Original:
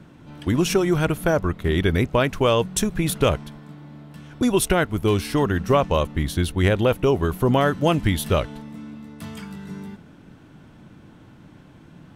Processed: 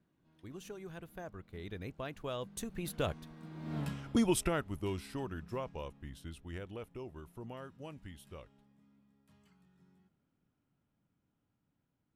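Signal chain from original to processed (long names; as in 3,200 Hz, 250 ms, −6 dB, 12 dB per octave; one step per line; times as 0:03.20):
source passing by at 0:03.80, 24 m/s, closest 1.6 metres
level +6.5 dB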